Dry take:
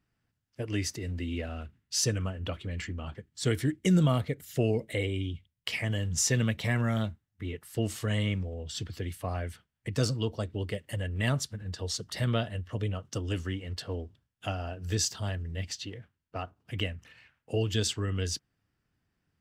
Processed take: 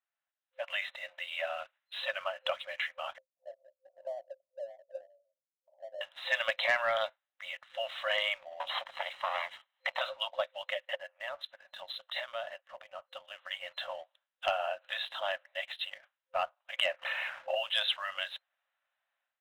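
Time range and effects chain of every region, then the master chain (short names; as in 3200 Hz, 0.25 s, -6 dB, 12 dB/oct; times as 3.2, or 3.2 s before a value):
3.18–6.01 steep low-pass 630 Hz 48 dB/oct + cascading flanger falling 1.2 Hz
8.6–10.01 minimum comb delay 1 ms + three-band squash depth 100%
10.95–13.51 compressor 8:1, threshold -35 dBFS + three-band expander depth 100%
16.86–17.55 HPF 87 Hz 24 dB/oct + tilt shelf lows +5.5 dB, about 1300 Hz + fast leveller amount 50%
whole clip: FFT band-pass 520–4100 Hz; sample leveller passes 1; AGC gain up to 11.5 dB; gain -8.5 dB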